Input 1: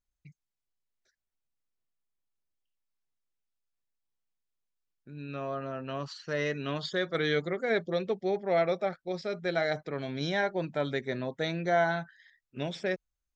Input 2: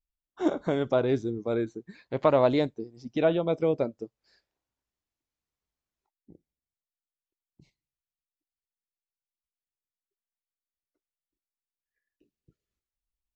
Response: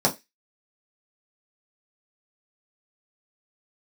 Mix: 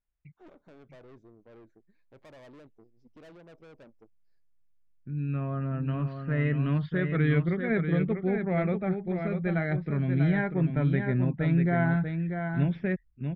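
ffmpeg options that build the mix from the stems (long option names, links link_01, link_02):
-filter_complex "[0:a]lowpass=frequency=2400:width=0.5412,lowpass=frequency=2400:width=1.3066,asubboost=boost=9.5:cutoff=180,volume=-1dB,asplit=2[link_01][link_02];[link_02]volume=-6.5dB[link_03];[1:a]highshelf=frequency=2200:gain=-11.5,dynaudnorm=framelen=460:gausssize=13:maxgain=5dB,aeval=exprs='(tanh(31.6*val(0)+0.6)-tanh(0.6))/31.6':channel_layout=same,volume=-19dB[link_04];[link_03]aecho=0:1:641:1[link_05];[link_01][link_04][link_05]amix=inputs=3:normalize=0,equalizer=frequency=2300:width_type=o:width=0.77:gain=2"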